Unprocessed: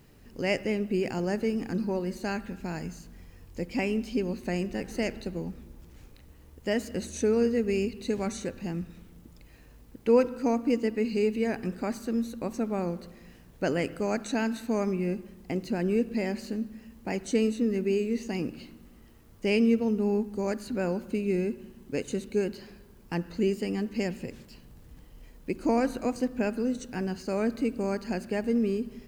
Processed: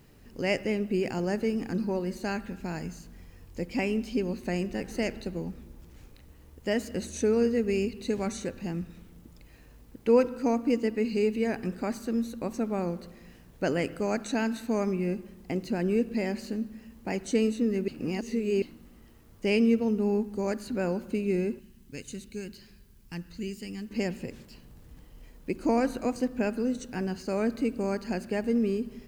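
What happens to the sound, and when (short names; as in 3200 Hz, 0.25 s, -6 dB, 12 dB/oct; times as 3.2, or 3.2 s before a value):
17.88–18.62 reverse
21.59–23.91 bell 600 Hz -15 dB 2.9 oct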